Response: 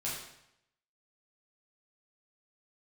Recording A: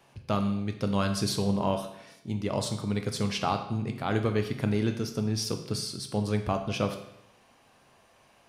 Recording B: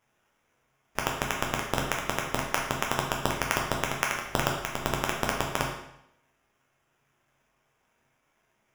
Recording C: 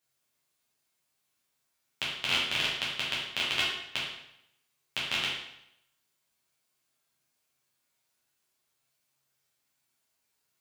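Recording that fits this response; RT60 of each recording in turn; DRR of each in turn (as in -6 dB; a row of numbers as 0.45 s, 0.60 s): C; 0.80 s, 0.80 s, 0.80 s; 5.0 dB, -1.0 dB, -7.5 dB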